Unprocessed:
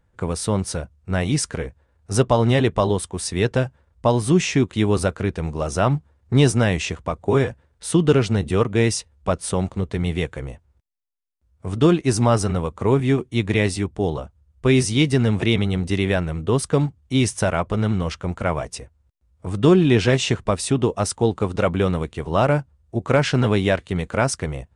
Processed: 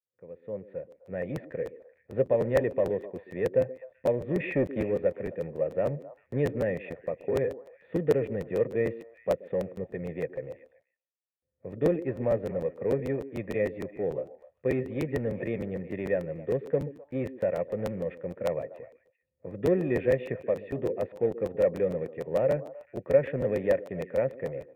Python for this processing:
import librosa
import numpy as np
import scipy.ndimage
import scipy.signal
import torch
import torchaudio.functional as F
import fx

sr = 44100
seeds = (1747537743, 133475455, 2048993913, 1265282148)

p1 = fx.fade_in_head(x, sr, length_s=1.53)
p2 = scipy.signal.sosfilt(scipy.signal.butter(4, 120.0, 'highpass', fs=sr, output='sos'), p1)
p3 = fx.tilt_eq(p2, sr, slope=-2.0)
p4 = fx.leveller(p3, sr, passes=2, at=(4.4, 4.82))
p5 = fx.hum_notches(p4, sr, base_hz=50, count=9, at=(20.45, 20.96))
p6 = 10.0 ** (-17.0 / 20.0) * (np.abs((p5 / 10.0 ** (-17.0 / 20.0) + 3.0) % 4.0 - 2.0) - 1.0)
p7 = p5 + (p6 * 10.0 ** (-11.0 / 20.0))
p8 = fx.formant_cascade(p7, sr, vowel='e')
p9 = p8 + fx.echo_stepped(p8, sr, ms=128, hz=320.0, octaves=1.4, feedback_pct=70, wet_db=-11.0, dry=0)
y = fx.buffer_crackle(p9, sr, first_s=0.9, period_s=0.15, block=512, kind='repeat')